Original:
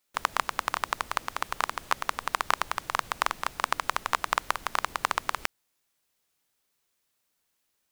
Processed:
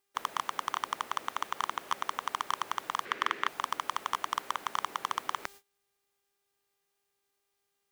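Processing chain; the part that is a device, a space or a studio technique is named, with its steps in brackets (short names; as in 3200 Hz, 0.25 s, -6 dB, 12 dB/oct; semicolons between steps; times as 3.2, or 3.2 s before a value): aircraft radio (BPF 330–2500 Hz; hard clip -22.5 dBFS, distortion -5 dB; buzz 400 Hz, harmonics 28, -64 dBFS -4 dB/oct; white noise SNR 20 dB; gate -54 dBFS, range -25 dB); 3.05–3.48 EQ curve 180 Hz 0 dB, 400 Hz +9 dB, 780 Hz -5 dB, 1800 Hz +10 dB, 9700 Hz -8 dB; gain +3.5 dB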